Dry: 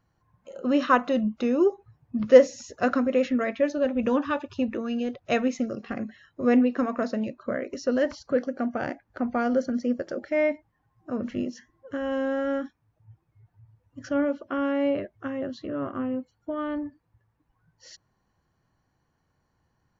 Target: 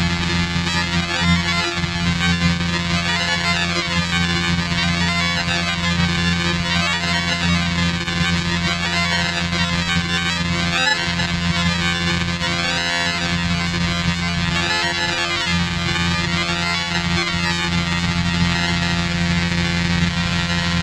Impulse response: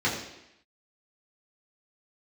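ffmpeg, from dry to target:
-filter_complex "[0:a]aeval=exprs='val(0)+0.5*0.119*sgn(val(0))':c=same,aecho=1:1:1.2:0.85,asetrate=42336,aresample=44100,asplit=2[s0][s1];[1:a]atrim=start_sample=2205,adelay=76[s2];[s1][s2]afir=irnorm=-1:irlink=0,volume=0.0282[s3];[s0][s3]amix=inputs=2:normalize=0,acontrast=74,aresample=16000,acrusher=samples=19:mix=1:aa=0.000001:lfo=1:lforange=11.4:lforate=0.52,aresample=44100,afftfilt=real='hypot(re,im)*cos(PI*b)':imag='0':win_size=1024:overlap=0.75,equalizer=f=125:t=o:w=1:g=8,equalizer=f=250:t=o:w=1:g=-5,equalizer=f=500:t=o:w=1:g=-10,equalizer=f=1000:t=o:w=1:g=-4,equalizer=f=2000:t=o:w=1:g=9,equalizer=f=4000:t=o:w=1:g=11,alimiter=limit=0.531:level=0:latency=1:release=386,asplit=4[s4][s5][s6][s7];[s5]asetrate=22050,aresample=44100,atempo=2,volume=0.562[s8];[s6]asetrate=37084,aresample=44100,atempo=1.18921,volume=0.158[s9];[s7]asetrate=66075,aresample=44100,atempo=0.66742,volume=0.141[s10];[s4][s8][s9][s10]amix=inputs=4:normalize=0,adynamicequalizer=threshold=0.00501:dfrequency=5900:dqfactor=7.4:tfrequency=5900:tqfactor=7.4:attack=5:release=100:ratio=0.375:range=1.5:mode=cutabove:tftype=bell,highpass=46"

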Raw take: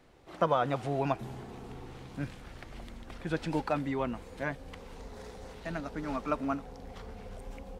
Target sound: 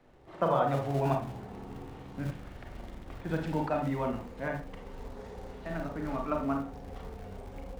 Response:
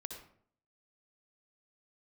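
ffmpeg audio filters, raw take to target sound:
-filter_complex "[0:a]highshelf=f=3400:g=-11.5[s0];[1:a]atrim=start_sample=2205,asetrate=79380,aresample=44100[s1];[s0][s1]afir=irnorm=-1:irlink=0,acrossover=split=150|3800[s2][s3][s4];[s2]acrusher=bits=2:mode=log:mix=0:aa=0.000001[s5];[s5][s3][s4]amix=inputs=3:normalize=0,volume=2.66"

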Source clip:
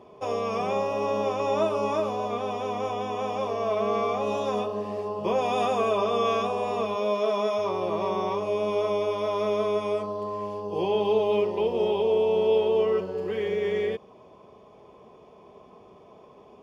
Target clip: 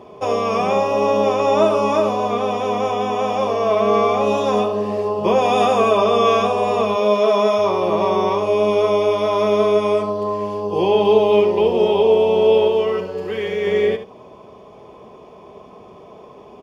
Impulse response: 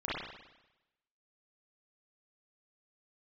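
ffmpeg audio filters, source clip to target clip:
-filter_complex "[0:a]asettb=1/sr,asplit=3[s0][s1][s2];[s0]atrim=end=12.684[s3];[s1]atrim=start=12.68:end=13.67,asetpts=PTS-STARTPTS,afade=t=in:d=0.004:c=qsin,afade=t=out:st=0.986:d=0.004:c=qsin,equalizer=f=330:w=0.38:g=-5[s4];[s2]atrim=start=13.666[s5];[s3][s4]acrossfade=d=0.004:c1=hsin:c2=qsin[s6];[s6][s5]acrossfade=d=0.004:c1=qsin:c2=hsin,aecho=1:1:72:0.282,volume=2.82"

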